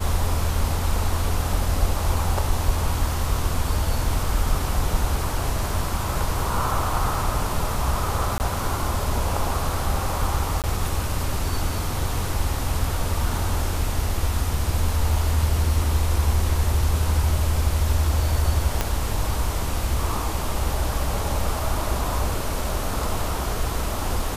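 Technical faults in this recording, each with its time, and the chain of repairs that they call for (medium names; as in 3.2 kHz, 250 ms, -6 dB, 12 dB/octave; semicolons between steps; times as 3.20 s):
8.38–8.40 s: dropout 19 ms
10.62–10.64 s: dropout 18 ms
18.81 s: pop -6 dBFS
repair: de-click; interpolate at 8.38 s, 19 ms; interpolate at 10.62 s, 18 ms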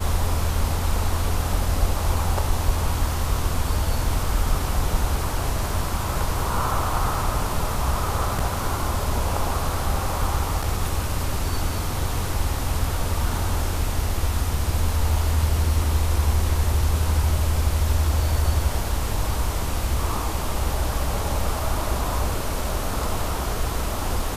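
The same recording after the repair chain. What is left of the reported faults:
18.81 s: pop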